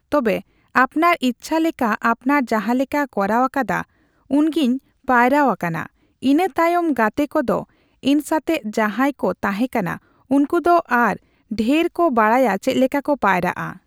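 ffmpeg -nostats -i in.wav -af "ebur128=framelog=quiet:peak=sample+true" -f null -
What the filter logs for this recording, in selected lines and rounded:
Integrated loudness:
  I:         -19.2 LUFS
  Threshold: -29.4 LUFS
Loudness range:
  LRA:         2.3 LU
  Threshold: -39.5 LUFS
  LRA low:   -20.6 LUFS
  LRA high:  -18.3 LUFS
Sample peak:
  Peak:       -2.5 dBFS
True peak:
  Peak:       -2.5 dBFS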